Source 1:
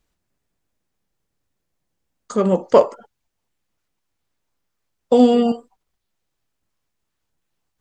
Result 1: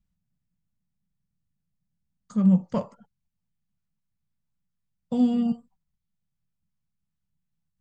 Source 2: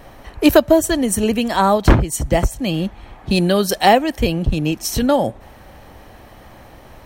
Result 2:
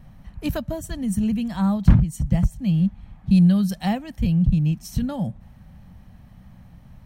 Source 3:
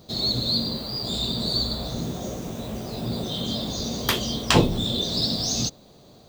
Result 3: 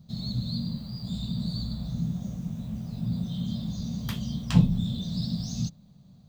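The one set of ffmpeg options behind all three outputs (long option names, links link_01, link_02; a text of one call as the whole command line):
ffmpeg -i in.wav -af "lowshelf=frequency=260:width_type=q:width=3:gain=12.5,volume=-15.5dB" out.wav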